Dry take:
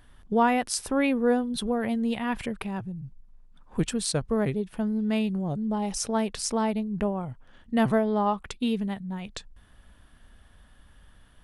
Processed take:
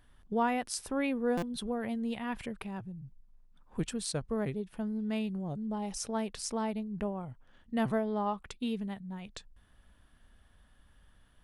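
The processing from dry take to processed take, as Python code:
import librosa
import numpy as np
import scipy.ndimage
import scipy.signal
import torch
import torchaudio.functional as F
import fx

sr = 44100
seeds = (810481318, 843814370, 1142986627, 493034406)

y = fx.buffer_glitch(x, sr, at_s=(1.37,), block=256, repeats=8)
y = y * librosa.db_to_amplitude(-7.5)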